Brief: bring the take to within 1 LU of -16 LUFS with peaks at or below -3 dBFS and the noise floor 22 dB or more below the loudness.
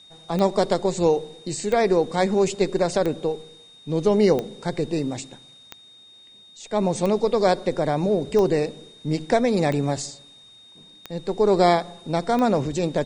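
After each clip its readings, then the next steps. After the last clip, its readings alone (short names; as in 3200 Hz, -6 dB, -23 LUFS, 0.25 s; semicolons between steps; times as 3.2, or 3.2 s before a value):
clicks 10; steady tone 3700 Hz; tone level -47 dBFS; loudness -22.5 LUFS; peak -5.5 dBFS; loudness target -16.0 LUFS
-> de-click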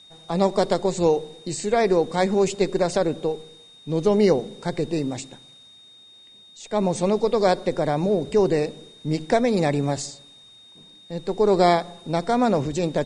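clicks 0; steady tone 3700 Hz; tone level -47 dBFS
-> notch 3700 Hz, Q 30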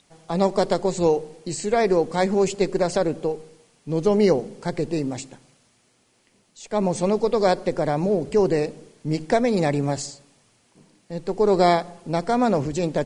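steady tone none; loudness -22.5 LUFS; peak -6.0 dBFS; loudness target -16.0 LUFS
-> gain +6.5 dB; limiter -3 dBFS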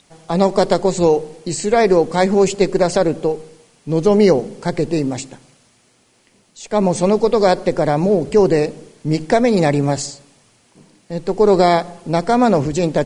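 loudness -16.5 LUFS; peak -3.0 dBFS; noise floor -56 dBFS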